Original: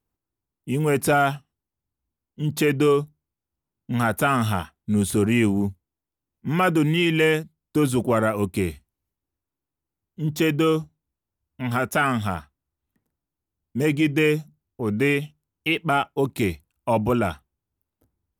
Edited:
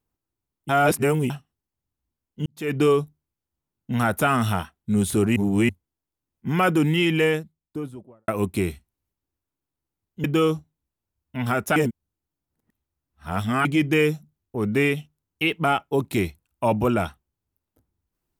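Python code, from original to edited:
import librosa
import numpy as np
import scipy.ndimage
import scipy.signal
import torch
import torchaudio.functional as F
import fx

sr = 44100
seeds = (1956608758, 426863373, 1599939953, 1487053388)

y = fx.studio_fade_out(x, sr, start_s=6.98, length_s=1.3)
y = fx.edit(y, sr, fx.reverse_span(start_s=0.69, length_s=0.61),
    fx.fade_in_span(start_s=2.46, length_s=0.31, curve='qua'),
    fx.reverse_span(start_s=5.36, length_s=0.33),
    fx.cut(start_s=10.24, length_s=0.25),
    fx.reverse_span(start_s=12.01, length_s=1.89), tone=tone)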